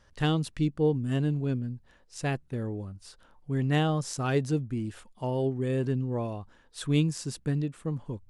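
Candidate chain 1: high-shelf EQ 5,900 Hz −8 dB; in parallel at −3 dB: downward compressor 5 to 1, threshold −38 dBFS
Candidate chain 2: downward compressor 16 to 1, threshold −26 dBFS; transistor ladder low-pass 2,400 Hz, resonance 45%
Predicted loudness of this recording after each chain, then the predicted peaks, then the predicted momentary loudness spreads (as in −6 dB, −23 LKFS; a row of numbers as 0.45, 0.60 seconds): −28.5, −42.0 LKFS; −13.0, −26.5 dBFS; 11, 8 LU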